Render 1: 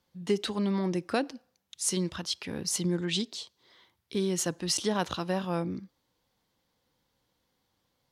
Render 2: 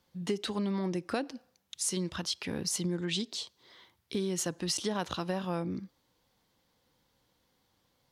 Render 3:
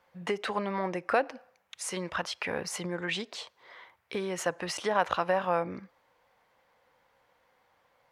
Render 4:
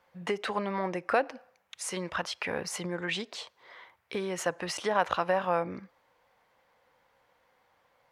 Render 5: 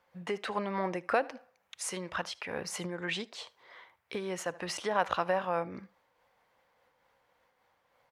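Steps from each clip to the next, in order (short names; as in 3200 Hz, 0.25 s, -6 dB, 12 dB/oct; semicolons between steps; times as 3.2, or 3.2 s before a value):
compressor 2.5:1, threshold -35 dBFS, peak gain reduction 9.5 dB; gain +3 dB
band shelf 1100 Hz +15 dB 2.8 oct; gain -5 dB
nothing audible
echo 76 ms -22.5 dB; noise-modulated level, depth 55%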